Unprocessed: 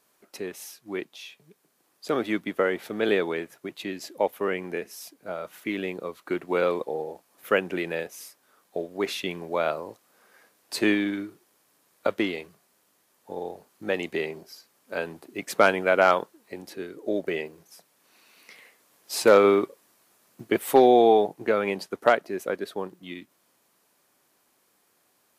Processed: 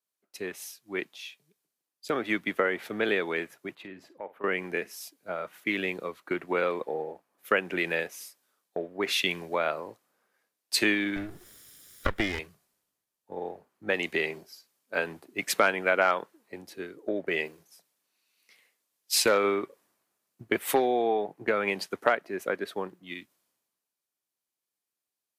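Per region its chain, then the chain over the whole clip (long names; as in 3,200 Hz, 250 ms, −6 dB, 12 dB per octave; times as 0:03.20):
0:03.75–0:04.44: drawn EQ curve 600 Hz 0 dB, 1,200 Hz +3 dB, 2,800 Hz −5 dB, 5,800 Hz −14 dB + downward compressor 3 to 1, threshold −36 dBFS + flutter between parallel walls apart 8.9 metres, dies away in 0.22 s
0:11.16–0:12.39: lower of the sound and its delayed copy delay 0.56 ms + upward compression, threshold −28 dBFS
whole clip: downward compressor 4 to 1, threshold −27 dBFS; dynamic equaliser 2,000 Hz, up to +7 dB, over −48 dBFS, Q 0.88; multiband upward and downward expander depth 70%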